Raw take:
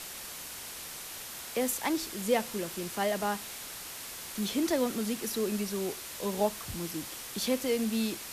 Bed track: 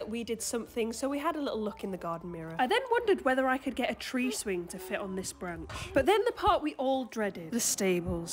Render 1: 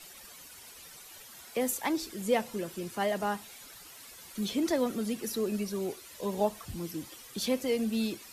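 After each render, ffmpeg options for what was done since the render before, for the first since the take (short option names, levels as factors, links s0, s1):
-af "afftdn=nr=12:nf=-43"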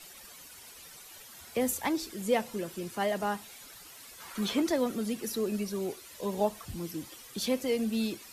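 -filter_complex "[0:a]asettb=1/sr,asplit=3[s0][s1][s2];[s0]atrim=end=1.414[s3];[s1]atrim=start=1.41:end=1.9,asetpts=PTS-STARTPTS,afade=t=in:d=0.004:c=qsin,afade=t=out:st=0.486:d=0.004:c=qsin,equalizer=f=77:w=0.77:g=12.5[s4];[s2]atrim=start=1.896[s5];[s3][s4]acrossfade=d=0.004:c1=hsin:c2=qsin[s6];[s6][s5]acrossfade=d=0.004:c1=qsin:c2=hsin,asettb=1/sr,asplit=3[s7][s8][s9];[s7]atrim=end=4.204[s10];[s8]atrim=start=4.2:end=4.62,asetpts=PTS-STARTPTS,afade=t=in:d=0.004:c=qsin,afade=t=out:st=0.416:d=0.004:c=qsin,equalizer=f=1200:t=o:w=1.8:g=12.5[s11];[s9]atrim=start=4.616[s12];[s10][s11]acrossfade=d=0.004:c1=hsin:c2=qsin[s13];[s13][s12]acrossfade=d=0.004:c1=qsin:c2=hsin"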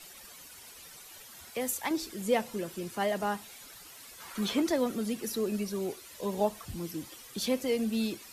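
-filter_complex "[0:a]asettb=1/sr,asplit=3[s0][s1][s2];[s0]atrim=end=1.504[s3];[s1]atrim=start=1.5:end=1.91,asetpts=PTS-STARTPTS,afade=t=in:d=0.004:c=qsin,afade=t=out:st=0.406:d=0.004:c=qsin,lowshelf=f=480:g=-9[s4];[s2]atrim=start=1.906[s5];[s3][s4]acrossfade=d=0.004:c1=hsin:c2=qsin[s6];[s6][s5]acrossfade=d=0.004:c1=qsin:c2=hsin"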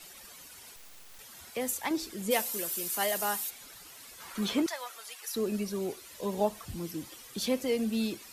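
-filter_complex "[0:a]asettb=1/sr,asplit=3[s0][s1][s2];[s0]atrim=end=0.764[s3];[s1]atrim=start=0.76:end=1.19,asetpts=PTS-STARTPTS,afade=t=in:d=0.004:c=qsin,afade=t=out:st=0.426:d=0.004:c=qsin,aeval=exprs='abs(val(0))':c=same[s4];[s2]atrim=start=1.186[s5];[s3][s4]acrossfade=d=0.004:c1=hsin:c2=qsin[s6];[s6][s5]acrossfade=d=0.004:c1=qsin:c2=hsin,asplit=3[s7][s8][s9];[s7]afade=t=out:st=2.3:d=0.02[s10];[s8]aemphasis=mode=production:type=riaa,afade=t=in:st=2.3:d=0.02,afade=t=out:st=3.49:d=0.02[s11];[s9]afade=t=in:st=3.49:d=0.02[s12];[s10][s11][s12]amix=inputs=3:normalize=0,asettb=1/sr,asplit=3[s13][s14][s15];[s13]atrim=end=4.664[s16];[s14]atrim=start=4.66:end=5.36,asetpts=PTS-STARTPTS,afade=t=in:d=0.004:c=qsin,afade=t=out:st=0.696:d=0.004:c=qsin,highpass=f=830:w=0.5412,highpass=f=830:w=1.3066[s17];[s15]atrim=start=5.356[s18];[s16][s17]acrossfade=d=0.004:c1=hsin:c2=qsin[s19];[s19][s18]acrossfade=d=0.004:c1=qsin:c2=hsin"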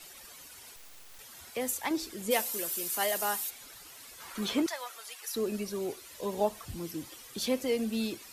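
-af "equalizer=f=190:w=4:g=-5"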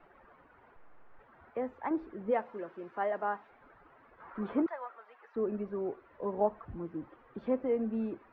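-af "lowpass=f=1500:w=0.5412,lowpass=f=1500:w=1.3066,equalizer=f=88:w=0.62:g=-4"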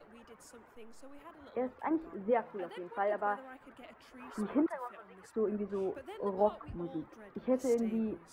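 -filter_complex "[1:a]volume=0.0794[s0];[0:a][s0]amix=inputs=2:normalize=0"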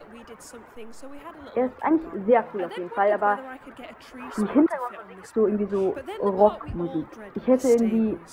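-af "volume=3.76"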